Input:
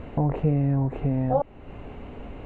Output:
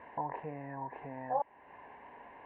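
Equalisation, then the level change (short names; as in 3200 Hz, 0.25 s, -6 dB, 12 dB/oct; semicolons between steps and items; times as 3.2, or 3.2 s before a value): double band-pass 1300 Hz, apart 0.82 oct; air absorption 160 m; +4.5 dB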